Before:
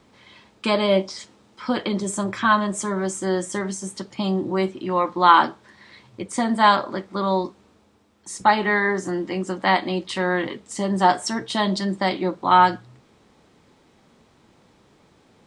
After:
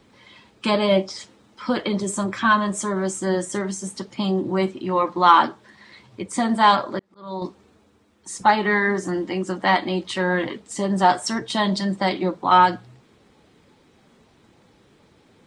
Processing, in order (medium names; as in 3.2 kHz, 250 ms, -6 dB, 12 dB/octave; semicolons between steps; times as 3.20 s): coarse spectral quantiser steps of 15 dB; 6.99–7.42 s: slow attack 657 ms; in parallel at -9 dB: saturation -9.5 dBFS, distortion -16 dB; on the sum: trim -1.5 dB